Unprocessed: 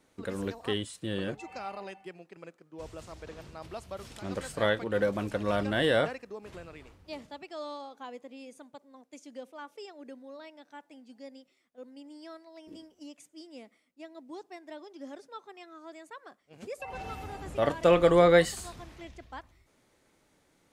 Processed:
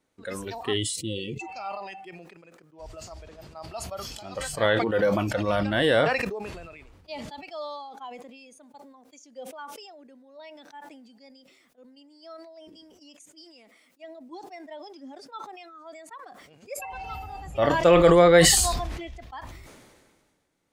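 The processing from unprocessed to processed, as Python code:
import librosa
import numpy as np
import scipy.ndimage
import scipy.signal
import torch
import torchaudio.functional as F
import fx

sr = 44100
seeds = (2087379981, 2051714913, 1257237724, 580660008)

y = fx.spec_erase(x, sr, start_s=0.77, length_s=0.64, low_hz=550.0, high_hz=1900.0)
y = fx.low_shelf(y, sr, hz=360.0, db=-9.0, at=(13.44, 14.04))
y = fx.noise_reduce_blind(y, sr, reduce_db=12)
y = fx.sustainer(y, sr, db_per_s=35.0)
y = F.gain(torch.from_numpy(y), 4.0).numpy()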